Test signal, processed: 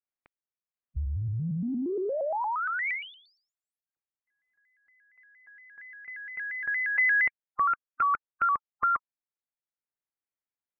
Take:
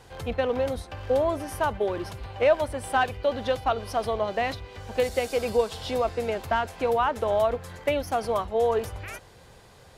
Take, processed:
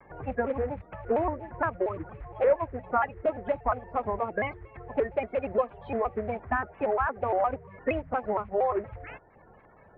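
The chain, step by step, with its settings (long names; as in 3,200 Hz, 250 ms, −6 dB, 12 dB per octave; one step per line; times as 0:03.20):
spectral magnitudes quantised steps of 30 dB
transient designer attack +2 dB, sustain −4 dB
elliptic low-pass filter 2,200 Hz, stop band 70 dB
pitch modulation by a square or saw wave square 4.3 Hz, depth 160 cents
level −2.5 dB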